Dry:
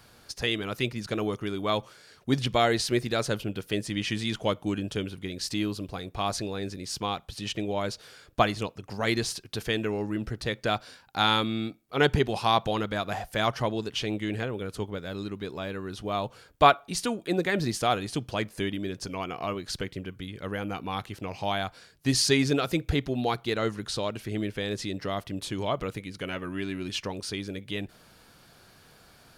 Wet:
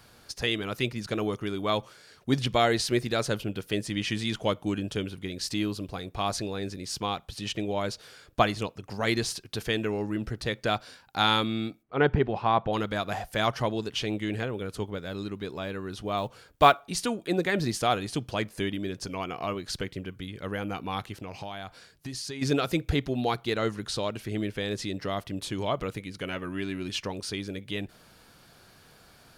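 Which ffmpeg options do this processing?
ffmpeg -i in.wav -filter_complex "[0:a]asplit=3[link_01][link_02][link_03];[link_01]afade=type=out:start_time=11.82:duration=0.02[link_04];[link_02]lowpass=1900,afade=type=in:start_time=11.82:duration=0.02,afade=type=out:start_time=12.72:duration=0.02[link_05];[link_03]afade=type=in:start_time=12.72:duration=0.02[link_06];[link_04][link_05][link_06]amix=inputs=3:normalize=0,asettb=1/sr,asplit=3[link_07][link_08][link_09];[link_07]atrim=end=16.174[link_10];[link_08]atrim=start=16.17:end=16.85,asetpts=PTS-STARTPTS,afade=type=in:duration=0.004:curve=qsin,afade=type=out:start_time=0.676:duration=0.004:curve=qsin,acrusher=bits=8:mode=log:mix=0:aa=0.000001[link_11];[link_09]atrim=start=16.846[link_12];[link_10][link_11]acrossfade=duration=0.004:curve1=hsin:curve2=qsin[link_13];[link_13][link_12]acrossfade=duration=0.004:curve1=qsin:curve2=hsin,asplit=3[link_14][link_15][link_16];[link_14]afade=type=out:start_time=21.12:duration=0.02[link_17];[link_15]acompressor=threshold=-34dB:ratio=6:attack=3.2:release=140:knee=1:detection=peak,afade=type=in:start_time=21.12:duration=0.02,afade=type=out:start_time=22.41:duration=0.02[link_18];[link_16]afade=type=in:start_time=22.41:duration=0.02[link_19];[link_17][link_18][link_19]amix=inputs=3:normalize=0" out.wav

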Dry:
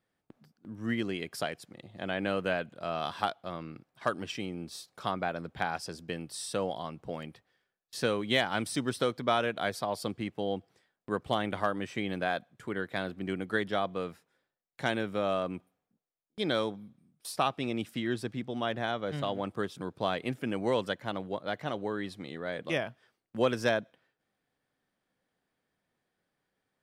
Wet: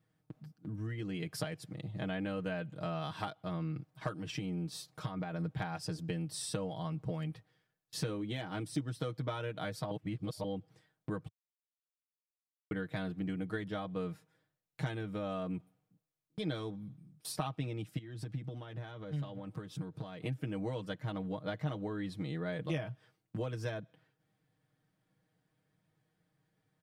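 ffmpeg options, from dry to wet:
ffmpeg -i in.wav -filter_complex "[0:a]asettb=1/sr,asplit=3[link_01][link_02][link_03];[link_01]atrim=end=4.174[link_04];[link_02]atrim=start=4.17:end=5.44,asetpts=PTS-STARTPTS,afade=type=in:duration=0.004:curve=qsin,afade=type=out:start_time=1.266:duration=0.004:curve=qsin,acompressor=threshold=-35dB:ratio=6:attack=3.2:release=140:knee=1:detection=peak[link_05];[link_03]atrim=start=5.436[link_06];[link_04][link_05]acrossfade=duration=0.004:curve1=hsin:curve2=qsin[link_07];[link_07][link_06]acrossfade=duration=0.004:curve1=qsin:curve2=hsin,asettb=1/sr,asplit=3[link_08][link_09][link_10];[link_08]atrim=end=8.084[link_11];[link_09]atrim=start=8.08:end=8.81,asetpts=PTS-STARTPTS,afade=type=in:duration=0.004:curve=qsin,afade=type=out:start_time=0.726:duration=0.004:curve=qsin,equalizer=frequency=340:width_type=o:width=1.1:gain=6.5[link_12];[link_10]atrim=start=8.806[link_13];[link_11][link_12]acrossfade=duration=0.004:curve1=hsin:curve2=qsin[link_14];[link_14][link_13]acrossfade=duration=0.004:curve1=qsin:curve2=hsin,asettb=1/sr,asplit=3[link_15][link_16][link_17];[link_15]atrim=end=17.984[link_18];[link_16]atrim=start=17.98:end=20.22,asetpts=PTS-STARTPTS,afade=type=in:duration=0.004:curve=qsin,afade=type=out:start_time=2.236:duration=0.004:curve=qsin,acompressor=threshold=-43dB:ratio=8:attack=3.2:release=140:knee=1:detection=peak[link_19];[link_17]atrim=start=20.216[link_20];[link_18][link_19]acrossfade=duration=0.004:curve1=hsin:curve2=qsin[link_21];[link_21][link_20]acrossfade=duration=0.004:curve1=qsin:curve2=hsin,asplit=5[link_22][link_23][link_24][link_25][link_26];[link_22]atrim=end=9.912[link_27];[link_23]atrim=start=9.908:end=10.442,asetpts=PTS-STARTPTS,areverse[link_28];[link_24]atrim=start=10.438:end=11.28,asetpts=PTS-STARTPTS,afade=type=out:start_time=0.838:duration=0.004:curve=hsin[link_29];[link_25]atrim=start=11.28:end=12.71,asetpts=PTS-STARTPTS,volume=0[link_30];[link_26]atrim=start=12.71,asetpts=PTS-STARTPTS,afade=type=in:duration=0.004:curve=hsin[link_31];[link_27][link_28]acrossfade=duration=0.004:curve1=hsin:curve2=hsin[link_32];[link_29][link_30][link_31]concat=n=3:v=0:a=1[link_33];[link_32][link_33]acrossfade=duration=0.004:curve1=hsin:curve2=hsin,equalizer=frequency=110:width_type=o:width=1.8:gain=14.5,acompressor=threshold=-33dB:ratio=6,aecho=1:1:6.4:0.75,volume=-3dB" out.wav

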